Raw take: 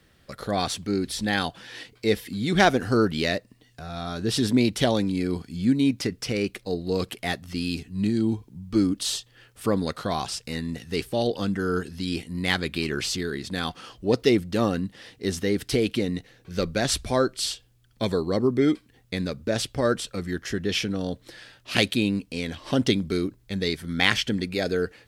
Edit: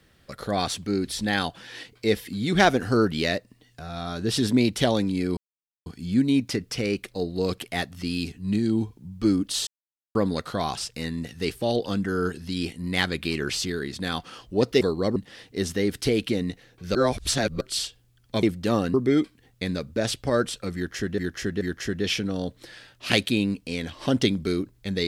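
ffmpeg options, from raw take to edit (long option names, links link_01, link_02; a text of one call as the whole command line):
ffmpeg -i in.wav -filter_complex "[0:a]asplit=12[link_01][link_02][link_03][link_04][link_05][link_06][link_07][link_08][link_09][link_10][link_11][link_12];[link_01]atrim=end=5.37,asetpts=PTS-STARTPTS,afade=type=out:start_time=5.366:duration=0.004:curve=hsin,apad=pad_dur=0.49[link_13];[link_02]atrim=start=5.37:end=9.18,asetpts=PTS-STARTPTS,afade=type=in:duration=0.004:curve=hsin,afade=type=out:start_time=3.806:duration=0.004:curve=hsin[link_14];[link_03]atrim=start=9.18:end=9.66,asetpts=PTS-STARTPTS,volume=0[link_15];[link_04]atrim=start=9.66:end=14.322,asetpts=PTS-STARTPTS,afade=type=in:duration=0.004:curve=hsin[link_16];[link_05]atrim=start=18.098:end=18.452[link_17];[link_06]atrim=start=14.828:end=16.622[link_18];[link_07]atrim=start=16.618:end=17.282,asetpts=PTS-STARTPTS,areverse[link_19];[link_08]atrim=start=17.278:end=18.102[link_20];[link_09]atrim=start=14.318:end=14.832[link_21];[link_10]atrim=start=18.448:end=20.692[link_22];[link_11]atrim=start=20.258:end=20.692[link_23];[link_12]atrim=start=20.258[link_24];[link_13][link_14][link_15][link_16]concat=n=4:v=0:a=1[link_25];[link_25][link_17]acrossfade=duration=0.004:curve1=hsin:curve2=hsin[link_26];[link_26][link_18]acrossfade=duration=0.004:curve1=hsin:curve2=hsin[link_27];[link_27][link_19]acrossfade=duration=0.004:curve1=hsin:curve2=hsin[link_28];[link_28][link_20]acrossfade=duration=0.004:curve1=hsin:curve2=hsin[link_29];[link_29][link_21]acrossfade=duration=0.004:curve1=hsin:curve2=hsin[link_30];[link_30][link_22]acrossfade=duration=0.004:curve1=hsin:curve2=hsin[link_31];[link_31][link_23]acrossfade=duration=0.004:curve1=hsin:curve2=hsin[link_32];[link_32][link_24]acrossfade=duration=0.004:curve1=hsin:curve2=hsin" out.wav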